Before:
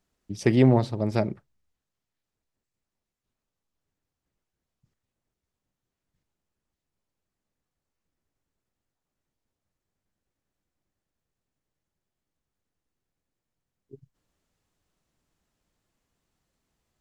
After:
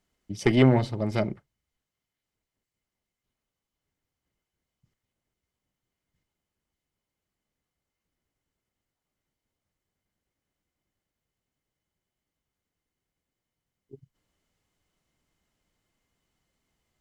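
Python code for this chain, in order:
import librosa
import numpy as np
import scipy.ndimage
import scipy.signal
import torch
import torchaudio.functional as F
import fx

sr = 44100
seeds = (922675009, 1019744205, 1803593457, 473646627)

y = fx.cheby_harmonics(x, sr, harmonics=(4,), levels_db=(-17,), full_scale_db=-6.5)
y = fx.small_body(y, sr, hz=(2100.0, 3000.0), ring_ms=45, db=12)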